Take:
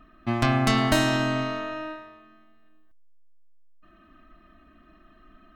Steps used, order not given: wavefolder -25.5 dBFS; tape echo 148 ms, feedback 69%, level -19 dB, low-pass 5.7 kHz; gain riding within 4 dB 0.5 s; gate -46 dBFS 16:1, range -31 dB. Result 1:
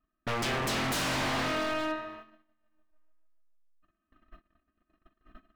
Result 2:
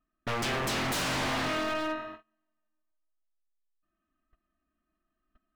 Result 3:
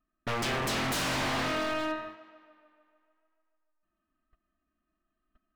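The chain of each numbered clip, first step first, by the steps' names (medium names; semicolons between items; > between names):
gain riding > wavefolder > tape echo > gate; tape echo > gate > gain riding > wavefolder; gate > gain riding > wavefolder > tape echo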